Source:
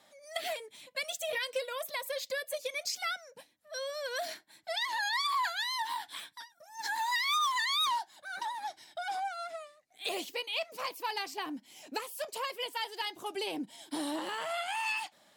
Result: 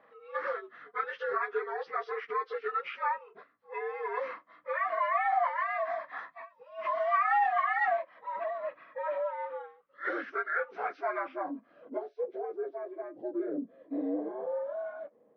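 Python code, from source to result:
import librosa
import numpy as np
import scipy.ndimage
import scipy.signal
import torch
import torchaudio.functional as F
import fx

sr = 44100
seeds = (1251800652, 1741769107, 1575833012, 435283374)

y = fx.partial_stretch(x, sr, pct=75)
y = fx.filter_sweep_lowpass(y, sr, from_hz=1400.0, to_hz=480.0, start_s=11.1, end_s=12.2, q=1.7)
y = y * librosa.db_to_amplitude(2.0)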